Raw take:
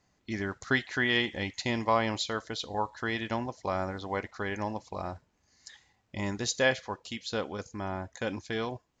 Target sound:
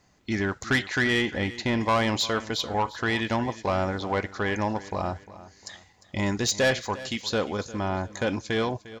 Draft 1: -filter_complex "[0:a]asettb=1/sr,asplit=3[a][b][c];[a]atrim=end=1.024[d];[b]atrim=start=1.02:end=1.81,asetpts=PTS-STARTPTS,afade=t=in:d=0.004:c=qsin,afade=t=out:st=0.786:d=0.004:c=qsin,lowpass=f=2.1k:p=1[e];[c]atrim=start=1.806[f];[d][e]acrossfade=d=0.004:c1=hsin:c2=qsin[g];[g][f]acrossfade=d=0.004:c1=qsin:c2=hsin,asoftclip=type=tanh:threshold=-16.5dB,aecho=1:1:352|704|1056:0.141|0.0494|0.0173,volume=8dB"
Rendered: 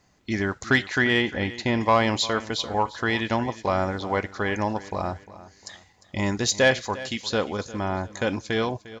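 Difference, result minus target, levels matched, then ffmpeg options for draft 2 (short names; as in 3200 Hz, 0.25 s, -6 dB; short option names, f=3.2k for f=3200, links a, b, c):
soft clip: distortion -10 dB
-filter_complex "[0:a]asettb=1/sr,asplit=3[a][b][c];[a]atrim=end=1.024[d];[b]atrim=start=1.02:end=1.81,asetpts=PTS-STARTPTS,afade=t=in:d=0.004:c=qsin,afade=t=out:st=0.786:d=0.004:c=qsin,lowpass=f=2.1k:p=1[e];[c]atrim=start=1.806[f];[d][e]acrossfade=d=0.004:c1=hsin:c2=qsin[g];[g][f]acrossfade=d=0.004:c1=qsin:c2=hsin,asoftclip=type=tanh:threshold=-25dB,aecho=1:1:352|704|1056:0.141|0.0494|0.0173,volume=8dB"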